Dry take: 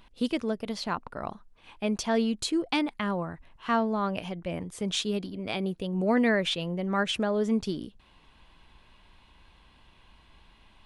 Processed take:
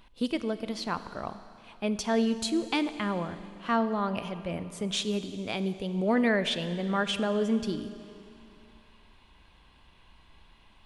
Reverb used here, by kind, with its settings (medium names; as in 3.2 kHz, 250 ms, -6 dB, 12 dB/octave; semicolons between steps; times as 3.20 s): Schroeder reverb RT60 2.6 s, combs from 31 ms, DRR 11.5 dB; trim -1 dB